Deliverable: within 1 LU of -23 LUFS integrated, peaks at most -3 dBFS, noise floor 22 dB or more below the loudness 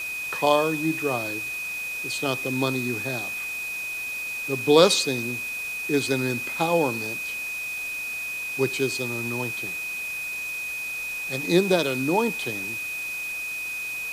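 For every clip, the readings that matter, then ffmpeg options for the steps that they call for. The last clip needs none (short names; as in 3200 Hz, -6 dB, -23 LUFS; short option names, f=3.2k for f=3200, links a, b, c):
steady tone 2500 Hz; tone level -29 dBFS; noise floor -32 dBFS; noise floor target -47 dBFS; loudness -25.0 LUFS; peak -3.5 dBFS; loudness target -23.0 LUFS
-> -af "bandreject=f=2.5k:w=30"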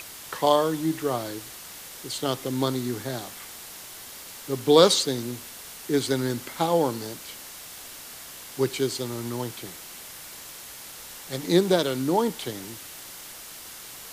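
steady tone none; noise floor -42 dBFS; noise floor target -48 dBFS
-> -af "afftdn=nr=6:nf=-42"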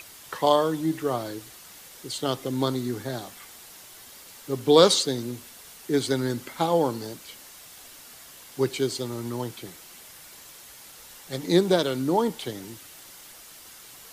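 noise floor -47 dBFS; noise floor target -48 dBFS
-> -af "afftdn=nr=6:nf=-47"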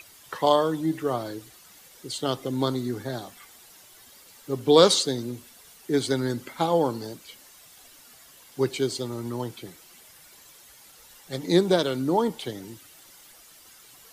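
noise floor -52 dBFS; loudness -25.5 LUFS; peak -3.5 dBFS; loudness target -23.0 LUFS
-> -af "volume=2.5dB,alimiter=limit=-3dB:level=0:latency=1"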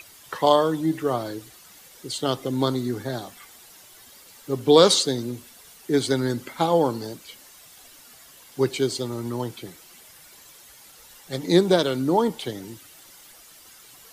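loudness -23.0 LUFS; peak -3.0 dBFS; noise floor -50 dBFS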